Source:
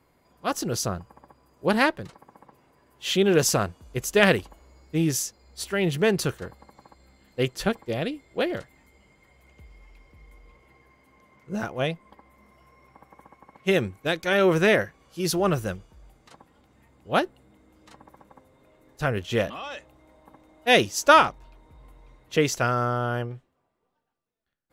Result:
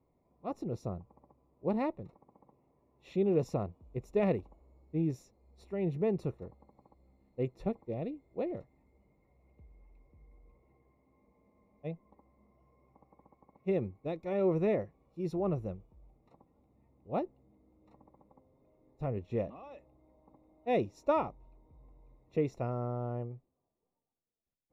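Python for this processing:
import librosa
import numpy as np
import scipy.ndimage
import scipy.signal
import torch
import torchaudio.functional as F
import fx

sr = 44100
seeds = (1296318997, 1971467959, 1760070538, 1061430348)

y = scipy.signal.lfilter(np.full(28, 1.0 / 28), 1.0, x)
y = fx.spec_freeze(y, sr, seeds[0], at_s=11.19, hold_s=0.67)
y = y * 10.0 ** (-7.5 / 20.0)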